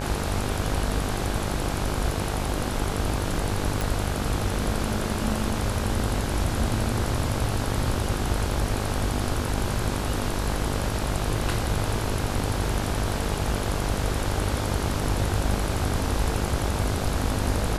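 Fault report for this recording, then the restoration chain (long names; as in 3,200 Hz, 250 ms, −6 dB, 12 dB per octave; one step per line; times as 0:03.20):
mains buzz 50 Hz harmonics 33 −30 dBFS
0:03.81: click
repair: click removal
hum removal 50 Hz, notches 33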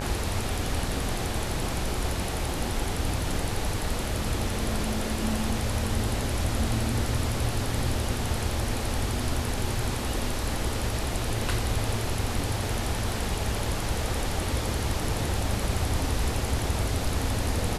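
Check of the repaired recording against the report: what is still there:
none of them is left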